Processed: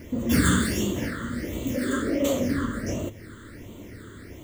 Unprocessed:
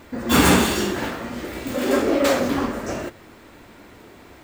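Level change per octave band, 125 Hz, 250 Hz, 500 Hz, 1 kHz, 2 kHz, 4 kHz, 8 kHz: 0.0, −3.0, −7.5, −11.0, −6.0, −8.5, −4.5 decibels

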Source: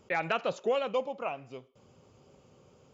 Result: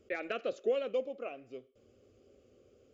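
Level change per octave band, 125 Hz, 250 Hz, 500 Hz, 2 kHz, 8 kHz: below −15 dB, −3.5 dB, −2.5 dB, −7.5 dB, can't be measured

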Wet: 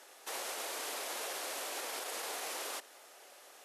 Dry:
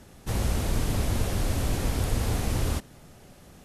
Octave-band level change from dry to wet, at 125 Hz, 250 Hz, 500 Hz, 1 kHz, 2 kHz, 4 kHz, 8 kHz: below −40 dB, −24.0 dB, −9.0 dB, −5.0 dB, −3.5 dB, −3.0 dB, −3.0 dB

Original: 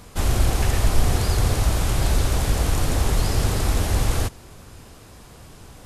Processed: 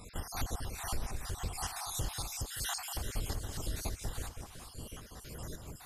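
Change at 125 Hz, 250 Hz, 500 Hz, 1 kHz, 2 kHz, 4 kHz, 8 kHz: −19.5, −18.5, −18.5, −13.5, −14.0, −11.5, −10.0 decibels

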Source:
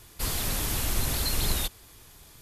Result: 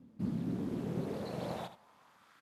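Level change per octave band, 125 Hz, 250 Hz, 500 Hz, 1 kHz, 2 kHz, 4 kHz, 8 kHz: −6.5, +2.5, −0.5, −7.5, −17.5, −23.0, −31.5 decibels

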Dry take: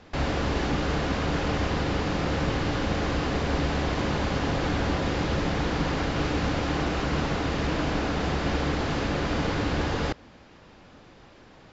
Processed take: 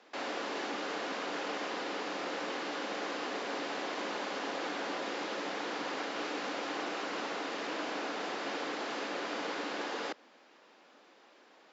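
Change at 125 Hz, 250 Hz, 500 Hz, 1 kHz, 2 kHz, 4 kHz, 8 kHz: −33.0 dB, −13.5 dB, −8.0 dB, −6.5 dB, −6.0 dB, −6.0 dB, can't be measured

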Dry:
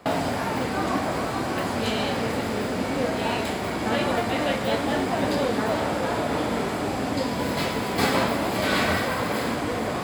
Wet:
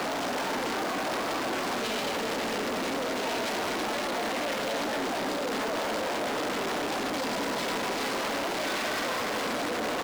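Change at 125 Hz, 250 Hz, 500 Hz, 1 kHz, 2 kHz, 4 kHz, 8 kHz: −15.0, −7.5, −5.0, −4.0, −3.0, −1.5, −0.5 decibels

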